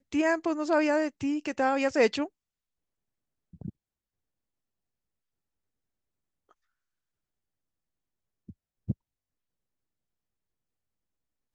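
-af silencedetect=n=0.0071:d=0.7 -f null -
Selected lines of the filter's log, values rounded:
silence_start: 2.27
silence_end: 3.54 | silence_duration: 1.27
silence_start: 3.70
silence_end: 8.49 | silence_duration: 4.79
silence_start: 8.93
silence_end: 11.55 | silence_duration: 2.62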